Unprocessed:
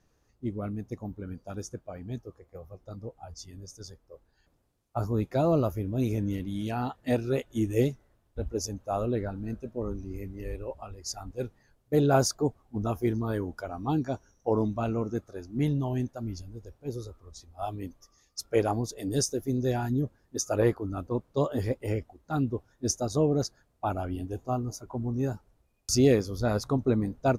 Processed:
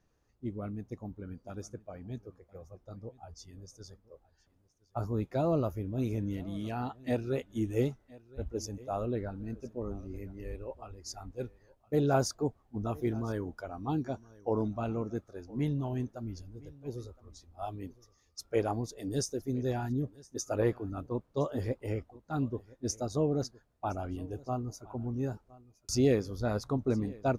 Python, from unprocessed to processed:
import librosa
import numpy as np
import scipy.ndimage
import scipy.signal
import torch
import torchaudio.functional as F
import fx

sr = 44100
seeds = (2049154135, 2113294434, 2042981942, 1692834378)

y = fx.high_shelf(x, sr, hz=5800.0, db=-5.0)
y = y + 10.0 ** (-22.0 / 20.0) * np.pad(y, (int(1015 * sr / 1000.0), 0))[:len(y)]
y = F.gain(torch.from_numpy(y), -4.5).numpy()